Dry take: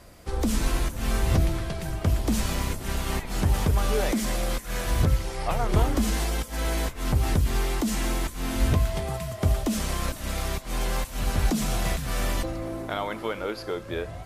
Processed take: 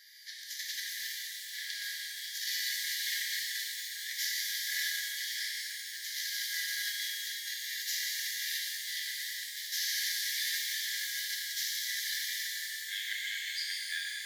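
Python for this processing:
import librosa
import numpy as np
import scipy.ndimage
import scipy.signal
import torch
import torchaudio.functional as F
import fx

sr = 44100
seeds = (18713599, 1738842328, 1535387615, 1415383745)

y = fx.over_compress(x, sr, threshold_db=-27.0, ratio=-0.5)
y = fx.fixed_phaser(y, sr, hz=2600.0, stages=6)
y = fx.cheby_harmonics(y, sr, harmonics=(8,), levels_db=(-28,), full_scale_db=-14.0)
y = fx.brickwall_highpass(y, sr, low_hz=1600.0)
y = fx.rev_shimmer(y, sr, seeds[0], rt60_s=3.2, semitones=12, shimmer_db=-8, drr_db=-4.0)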